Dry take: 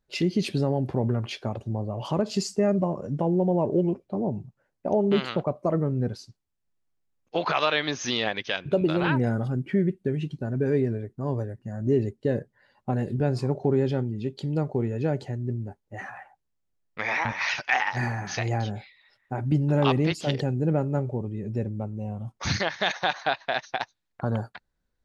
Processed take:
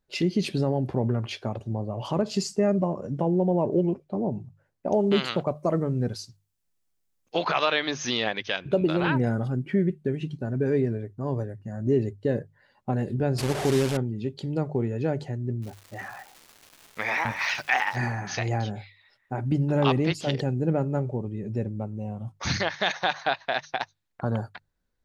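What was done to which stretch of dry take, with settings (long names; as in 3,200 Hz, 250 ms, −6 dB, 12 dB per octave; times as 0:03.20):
0:04.92–0:07.45: high-shelf EQ 3,800 Hz +10 dB
0:13.38–0:13.97: linear delta modulator 64 kbit/s, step −24 dBFS
0:15.61–0:17.96: surface crackle 570 per second −39 dBFS
whole clip: mains-hum notches 50/100/150 Hz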